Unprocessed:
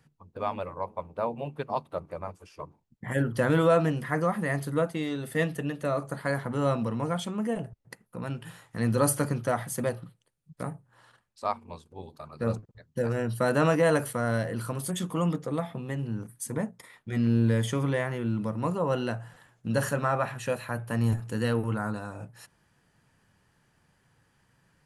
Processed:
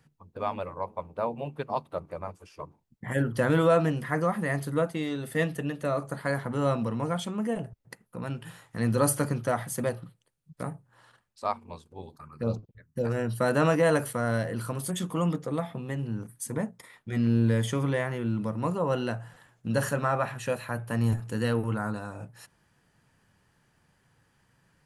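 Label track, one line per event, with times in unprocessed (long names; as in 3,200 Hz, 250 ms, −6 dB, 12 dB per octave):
12.160000	13.050000	phaser swept by the level lowest notch 470 Hz, up to 1,800 Hz, full sweep at −28.5 dBFS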